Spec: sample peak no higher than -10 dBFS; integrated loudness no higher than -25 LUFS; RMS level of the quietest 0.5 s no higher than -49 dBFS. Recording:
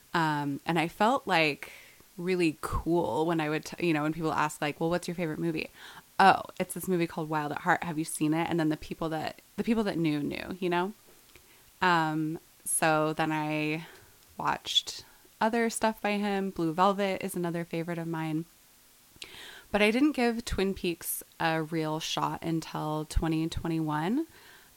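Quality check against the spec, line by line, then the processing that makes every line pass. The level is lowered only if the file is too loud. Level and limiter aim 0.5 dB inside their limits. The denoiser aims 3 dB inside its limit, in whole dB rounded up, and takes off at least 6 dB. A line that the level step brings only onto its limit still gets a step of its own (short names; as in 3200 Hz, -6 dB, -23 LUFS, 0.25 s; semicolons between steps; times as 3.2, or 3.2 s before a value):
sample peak -8.0 dBFS: fail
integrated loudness -29.5 LUFS: OK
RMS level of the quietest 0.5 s -59 dBFS: OK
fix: limiter -10.5 dBFS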